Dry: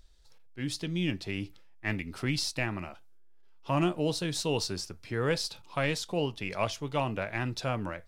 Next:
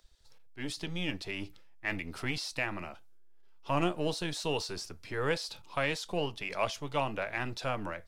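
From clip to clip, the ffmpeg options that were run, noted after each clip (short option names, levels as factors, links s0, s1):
-filter_complex "[0:a]acrossover=split=390|3400[s0][s1][s2];[s0]aeval=exprs='max(val(0),0)':c=same[s3];[s2]alimiter=level_in=2.99:limit=0.0631:level=0:latency=1:release=19,volume=0.335[s4];[s3][s1][s4]amix=inputs=3:normalize=0"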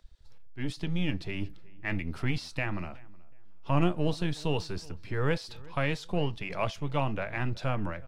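-filter_complex "[0:a]bass=f=250:g=10,treble=f=4000:g=-7,asplit=2[s0][s1];[s1]adelay=370,lowpass=f=2200:p=1,volume=0.0708,asplit=2[s2][s3];[s3]adelay=370,lowpass=f=2200:p=1,volume=0.28[s4];[s0][s2][s4]amix=inputs=3:normalize=0"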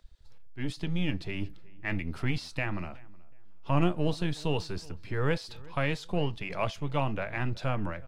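-af "bandreject=f=5600:w=29"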